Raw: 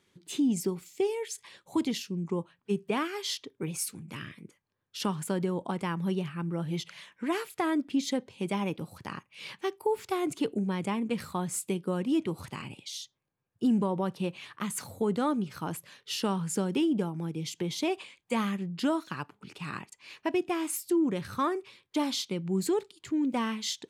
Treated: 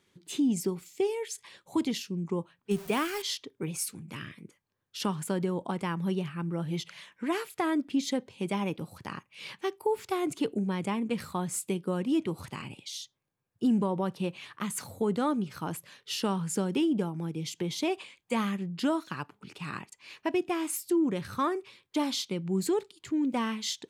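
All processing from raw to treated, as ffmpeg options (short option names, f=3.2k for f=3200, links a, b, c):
-filter_complex "[0:a]asettb=1/sr,asplit=3[a][b][c];[a]atrim=end=2.714[d];[b]atrim=start=2.71:end=3.22,asetpts=PTS-STARTPTS,afade=t=in:d=0.004:c=qsin,afade=t=out:st=0.506:d=0.004:c=qsin,aeval=exprs='val(0)+0.5*0.00794*sgn(val(0))':c=same,highshelf=f=5.9k:g=11.5[e];[c]atrim=start=3.216[f];[d][e]acrossfade=d=0.004:c1=hsin:c2=qsin[g];[g][f]acrossfade=d=0.004:c1=qsin:c2=hsin"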